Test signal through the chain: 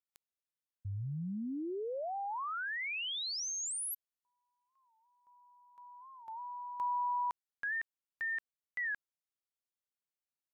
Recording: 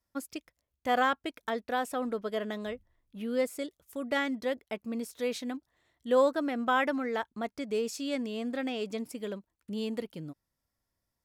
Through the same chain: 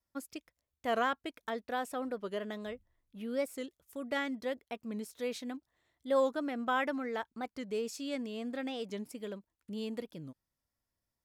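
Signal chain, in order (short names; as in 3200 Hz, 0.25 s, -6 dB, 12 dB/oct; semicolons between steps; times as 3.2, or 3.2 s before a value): record warp 45 rpm, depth 160 cents; gain -4.5 dB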